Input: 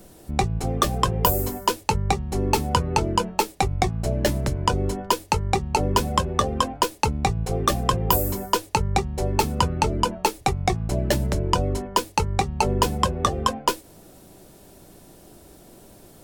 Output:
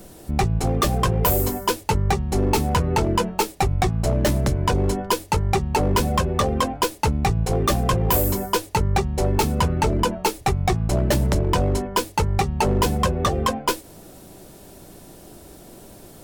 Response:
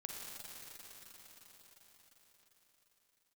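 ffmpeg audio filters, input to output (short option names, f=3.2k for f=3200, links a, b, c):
-af "volume=19dB,asoftclip=hard,volume=-19dB,volume=4.5dB"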